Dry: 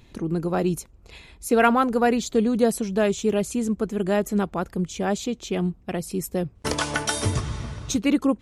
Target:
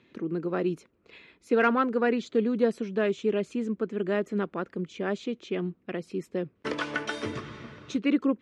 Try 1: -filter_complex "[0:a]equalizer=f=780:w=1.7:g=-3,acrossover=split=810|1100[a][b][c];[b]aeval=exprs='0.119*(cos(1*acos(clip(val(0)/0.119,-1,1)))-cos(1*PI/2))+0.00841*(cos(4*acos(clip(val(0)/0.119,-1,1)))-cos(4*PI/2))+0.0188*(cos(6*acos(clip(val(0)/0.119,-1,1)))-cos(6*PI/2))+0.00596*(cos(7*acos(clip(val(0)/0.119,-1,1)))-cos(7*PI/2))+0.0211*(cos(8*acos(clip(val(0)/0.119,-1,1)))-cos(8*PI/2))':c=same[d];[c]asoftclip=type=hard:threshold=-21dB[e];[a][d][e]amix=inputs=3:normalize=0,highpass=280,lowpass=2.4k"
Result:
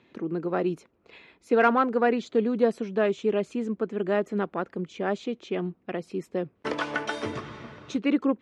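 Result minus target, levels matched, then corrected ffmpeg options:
1000 Hz band +2.5 dB
-filter_complex "[0:a]equalizer=f=780:w=1.7:g=-10,acrossover=split=810|1100[a][b][c];[b]aeval=exprs='0.119*(cos(1*acos(clip(val(0)/0.119,-1,1)))-cos(1*PI/2))+0.00841*(cos(4*acos(clip(val(0)/0.119,-1,1)))-cos(4*PI/2))+0.0188*(cos(6*acos(clip(val(0)/0.119,-1,1)))-cos(6*PI/2))+0.00596*(cos(7*acos(clip(val(0)/0.119,-1,1)))-cos(7*PI/2))+0.0211*(cos(8*acos(clip(val(0)/0.119,-1,1)))-cos(8*PI/2))':c=same[d];[c]asoftclip=type=hard:threshold=-21dB[e];[a][d][e]amix=inputs=3:normalize=0,highpass=280,lowpass=2.4k"

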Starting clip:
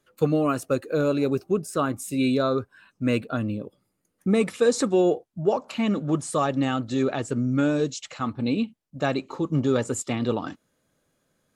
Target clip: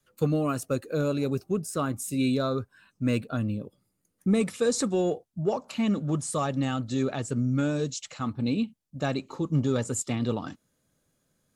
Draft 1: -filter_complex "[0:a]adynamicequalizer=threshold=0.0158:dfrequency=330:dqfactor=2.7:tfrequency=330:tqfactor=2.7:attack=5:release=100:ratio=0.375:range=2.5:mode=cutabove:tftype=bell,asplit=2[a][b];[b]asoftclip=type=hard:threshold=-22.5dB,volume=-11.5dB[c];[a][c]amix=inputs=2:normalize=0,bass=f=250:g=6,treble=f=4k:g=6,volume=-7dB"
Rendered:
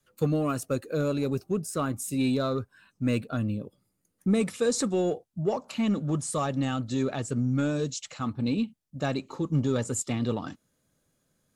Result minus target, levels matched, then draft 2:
hard clip: distortion +9 dB
-filter_complex "[0:a]adynamicequalizer=threshold=0.0158:dfrequency=330:dqfactor=2.7:tfrequency=330:tqfactor=2.7:attack=5:release=100:ratio=0.375:range=2.5:mode=cutabove:tftype=bell,asplit=2[a][b];[b]asoftclip=type=hard:threshold=-16.5dB,volume=-11.5dB[c];[a][c]amix=inputs=2:normalize=0,bass=f=250:g=6,treble=f=4k:g=6,volume=-7dB"

